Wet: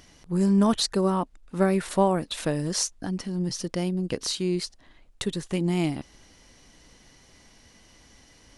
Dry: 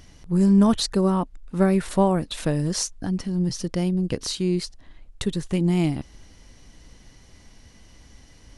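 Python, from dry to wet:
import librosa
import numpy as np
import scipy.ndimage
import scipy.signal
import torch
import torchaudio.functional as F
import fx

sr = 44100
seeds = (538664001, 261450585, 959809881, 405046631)

y = fx.low_shelf(x, sr, hz=160.0, db=-11.0)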